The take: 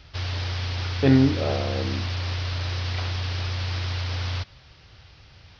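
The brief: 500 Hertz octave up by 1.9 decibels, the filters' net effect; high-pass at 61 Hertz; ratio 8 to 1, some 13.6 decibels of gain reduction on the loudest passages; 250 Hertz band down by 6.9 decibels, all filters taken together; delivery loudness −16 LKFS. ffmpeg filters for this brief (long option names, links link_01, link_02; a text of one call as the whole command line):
ffmpeg -i in.wav -af "highpass=61,equalizer=frequency=250:width_type=o:gain=-9,equalizer=frequency=500:width_type=o:gain=5,acompressor=threshold=-30dB:ratio=8,volume=18dB" out.wav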